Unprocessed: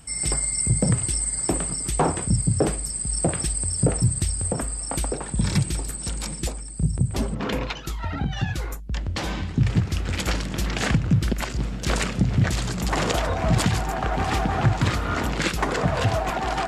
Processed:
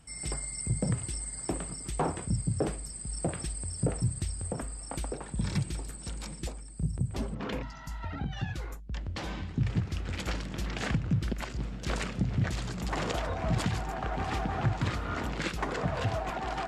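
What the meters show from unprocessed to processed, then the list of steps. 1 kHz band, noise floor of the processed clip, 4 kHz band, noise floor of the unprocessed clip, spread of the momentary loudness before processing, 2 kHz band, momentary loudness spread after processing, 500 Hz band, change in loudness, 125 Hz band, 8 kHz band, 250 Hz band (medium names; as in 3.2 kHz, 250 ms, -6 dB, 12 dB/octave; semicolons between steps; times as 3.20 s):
-8.5 dB, -43 dBFS, -10.0 dB, -33 dBFS, 7 LU, -9.0 dB, 8 LU, -8.5 dB, -9.5 dB, -8.5 dB, -13.0 dB, -8.5 dB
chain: spectral replace 7.65–7.96 s, 280–4400 Hz after; treble shelf 7.6 kHz -8.5 dB; trim -8.5 dB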